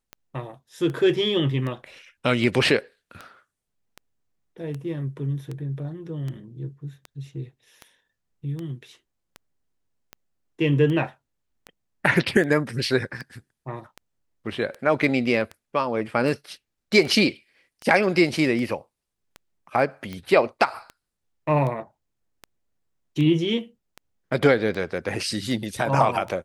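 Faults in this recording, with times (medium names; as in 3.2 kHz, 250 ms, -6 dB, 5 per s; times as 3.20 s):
tick 78 rpm -21 dBFS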